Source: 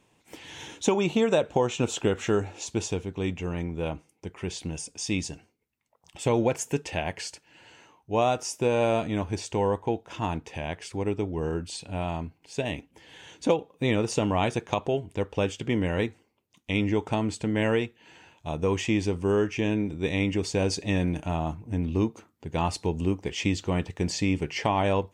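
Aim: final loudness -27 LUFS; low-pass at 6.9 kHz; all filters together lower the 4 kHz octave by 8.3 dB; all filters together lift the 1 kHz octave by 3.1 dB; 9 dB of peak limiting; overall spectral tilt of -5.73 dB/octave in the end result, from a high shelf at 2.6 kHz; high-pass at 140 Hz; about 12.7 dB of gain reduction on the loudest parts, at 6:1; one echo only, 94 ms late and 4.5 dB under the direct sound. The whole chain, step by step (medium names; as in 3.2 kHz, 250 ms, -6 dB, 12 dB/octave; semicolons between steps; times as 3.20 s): high-pass 140 Hz; low-pass 6.9 kHz; peaking EQ 1 kHz +5 dB; treble shelf 2.6 kHz -5 dB; peaking EQ 4 kHz -7 dB; compression 6:1, threshold -31 dBFS; peak limiter -24 dBFS; delay 94 ms -4.5 dB; trim +10.5 dB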